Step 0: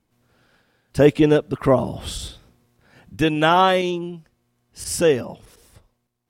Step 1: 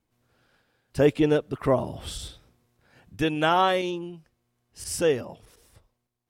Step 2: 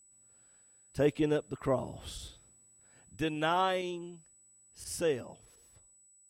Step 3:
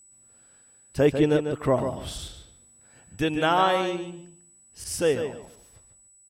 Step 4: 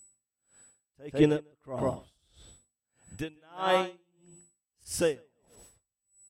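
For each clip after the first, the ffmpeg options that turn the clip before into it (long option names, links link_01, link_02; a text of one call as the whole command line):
ffmpeg -i in.wav -af "equalizer=frequency=200:width_type=o:width=0.51:gain=-4,volume=-5.5dB" out.wav
ffmpeg -i in.wav -af "aeval=exprs='val(0)+0.00251*sin(2*PI*7900*n/s)':channel_layout=same,volume=-8dB" out.wav
ffmpeg -i in.wav -filter_complex "[0:a]asplit=2[link_01][link_02];[link_02]adelay=146,lowpass=frequency=4200:poles=1,volume=-7.5dB,asplit=2[link_03][link_04];[link_04]adelay=146,lowpass=frequency=4200:poles=1,volume=0.21,asplit=2[link_05][link_06];[link_06]adelay=146,lowpass=frequency=4200:poles=1,volume=0.21[link_07];[link_01][link_03][link_05][link_07]amix=inputs=4:normalize=0,volume=7.5dB" out.wav
ffmpeg -i in.wav -af "aeval=exprs='val(0)*pow(10,-37*(0.5-0.5*cos(2*PI*1.6*n/s))/20)':channel_layout=same" out.wav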